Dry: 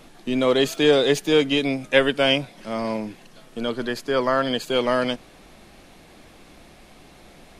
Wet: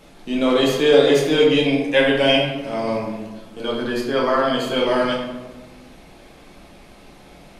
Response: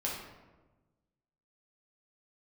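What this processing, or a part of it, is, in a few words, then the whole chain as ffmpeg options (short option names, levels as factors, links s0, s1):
bathroom: -filter_complex "[1:a]atrim=start_sample=2205[s0];[0:a][s0]afir=irnorm=-1:irlink=0,asettb=1/sr,asplit=3[s1][s2][s3];[s1]atrim=end=1.584[s4];[s2]atrim=start=1.58:end=2.55,asetpts=PTS-STARTPTS,afade=t=in:d=0.004:c=qsin,afade=t=out:st=0.966:d=0.004:c=qsin,bandreject=f=1300:w=6.4[s5];[s3]atrim=start=2.546[s6];[s4][s5]acrossfade=d=0.004:c1=hsin:c2=qsin[s7];[s7][s6]acrossfade=d=0.004:c1=qsin:c2=hsin,volume=0.841"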